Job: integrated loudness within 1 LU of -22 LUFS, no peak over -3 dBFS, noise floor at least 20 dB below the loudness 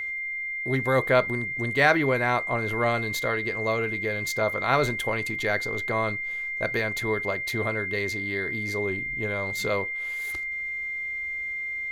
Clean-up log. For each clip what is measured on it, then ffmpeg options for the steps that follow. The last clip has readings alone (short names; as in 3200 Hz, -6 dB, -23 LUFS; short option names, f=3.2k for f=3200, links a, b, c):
steady tone 2100 Hz; tone level -29 dBFS; loudness -26.0 LUFS; peak -6.0 dBFS; loudness target -22.0 LUFS
-> -af "bandreject=f=2.1k:w=30"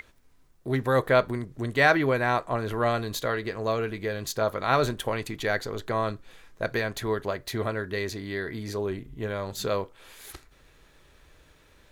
steady tone none; loudness -27.5 LUFS; peak -7.0 dBFS; loudness target -22.0 LUFS
-> -af "volume=5.5dB,alimiter=limit=-3dB:level=0:latency=1"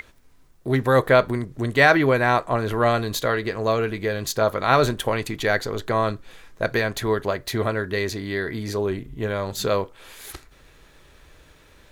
loudness -22.5 LUFS; peak -3.0 dBFS; noise floor -53 dBFS